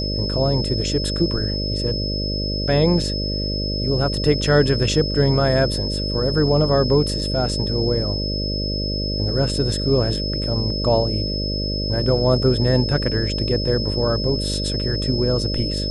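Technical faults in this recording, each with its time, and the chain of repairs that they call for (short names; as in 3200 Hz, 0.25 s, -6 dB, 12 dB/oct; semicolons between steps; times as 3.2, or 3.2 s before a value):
buzz 50 Hz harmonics 12 -25 dBFS
tone 5200 Hz -26 dBFS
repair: notch 5200 Hz, Q 30; de-hum 50 Hz, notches 12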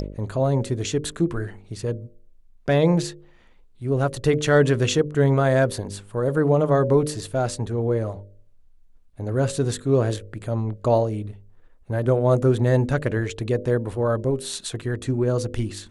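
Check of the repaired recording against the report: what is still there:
none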